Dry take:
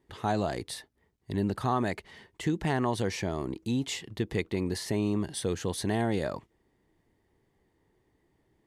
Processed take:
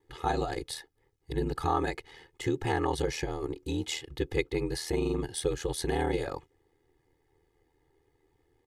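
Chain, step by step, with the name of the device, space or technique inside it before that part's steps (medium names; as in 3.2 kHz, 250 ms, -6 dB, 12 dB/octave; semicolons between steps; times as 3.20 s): ring-modulated robot voice (ring modulator 40 Hz; comb 2.4 ms, depth 99%)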